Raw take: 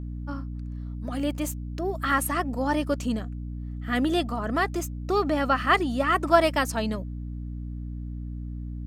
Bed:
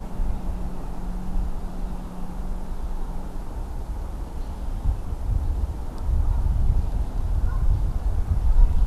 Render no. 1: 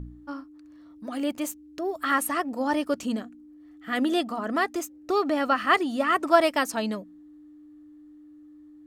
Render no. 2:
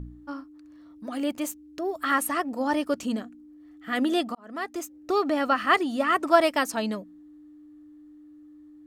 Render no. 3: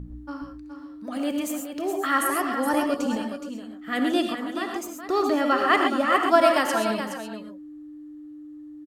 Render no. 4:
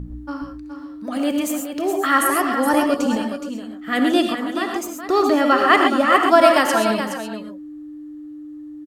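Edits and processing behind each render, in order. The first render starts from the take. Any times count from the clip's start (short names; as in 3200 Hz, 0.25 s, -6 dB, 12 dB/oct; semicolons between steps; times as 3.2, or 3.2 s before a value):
de-hum 60 Hz, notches 4
4.35–4.97 fade in
echo 0.42 s -9 dB; non-linear reverb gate 0.15 s rising, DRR 3 dB
gain +6 dB; limiter -1 dBFS, peak gain reduction 2 dB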